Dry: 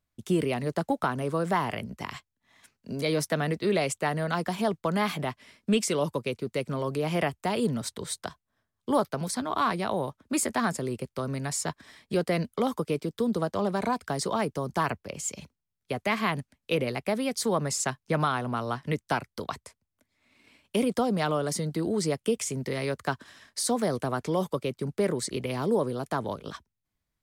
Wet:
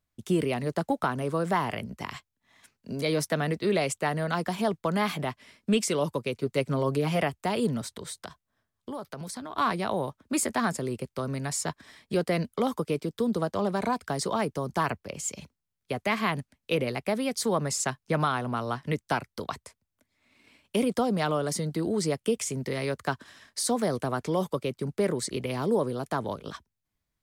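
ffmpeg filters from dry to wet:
-filter_complex "[0:a]asettb=1/sr,asplit=3[s0][s1][s2];[s0]atrim=end=6.364[s3];[s1]atrim=start=6.36:end=7.2,asetpts=PTS-STARTPTS,afade=t=in:d=0.004:c=qsin,afade=t=out:st=0.836:d=0.004:c=qsin,aecho=1:1:7.3:0.63,atrim=end_sample=37044[s4];[s2]atrim=start=7.196[s5];[s3][s4]acrossfade=d=0.004:c1=hsin:c2=qsin[s6];[s6][s5]acrossfade=d=0.004:c1=qsin:c2=hsin,asettb=1/sr,asplit=3[s7][s8][s9];[s7]atrim=end=7.814[s10];[s8]atrim=start=7.81:end=9.58,asetpts=PTS-STARTPTS,afade=t=in:d=0.004:c=qsin,afade=t=out:st=1.766:d=0.004:c=qsin,acompressor=threshold=0.02:ratio=6:attack=3.2:release=140:knee=1:detection=peak[s11];[s9]atrim=start=9.576[s12];[s10][s11]acrossfade=d=0.004:c1=hsin:c2=qsin[s13];[s13][s12]acrossfade=d=0.004:c1=qsin:c2=hsin"

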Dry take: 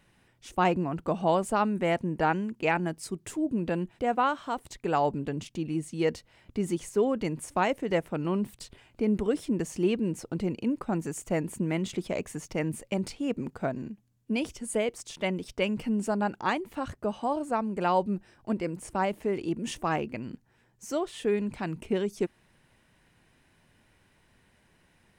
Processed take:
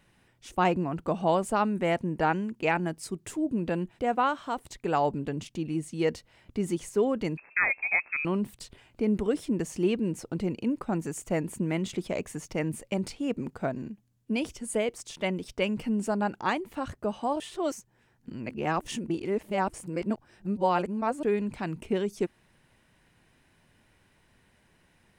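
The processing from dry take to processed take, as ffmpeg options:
-filter_complex "[0:a]asettb=1/sr,asplit=3[s0][s1][s2];[s0]atrim=end=7.374[s3];[s1]atrim=start=7.37:end=8.25,asetpts=PTS-STARTPTS,afade=t=in:d=0.004:c=qsin,afade=t=out:st=0.876:d=0.004:c=qsin,lowpass=f=2300:t=q:w=0.5098,lowpass=f=2300:t=q:w=0.6013,lowpass=f=2300:t=q:w=0.9,lowpass=f=2300:t=q:w=2.563,afreqshift=-2700[s4];[s2]atrim=start=8.246[s5];[s3][s4]acrossfade=d=0.004:c1=hsin:c2=qsin[s6];[s6][s5]acrossfade=d=0.004:c1=qsin:c2=hsin,asplit=3[s7][s8][s9];[s7]atrim=end=17.402[s10];[s8]atrim=start=17.398:end=21.232,asetpts=PTS-STARTPTS,areverse[s11];[s9]atrim=start=21.228[s12];[s10][s11]acrossfade=d=0.004:c1=hsin:c2=hsin[s13];[s13][s12]acrossfade=d=0.004:c1=hsin:c2=hsin"

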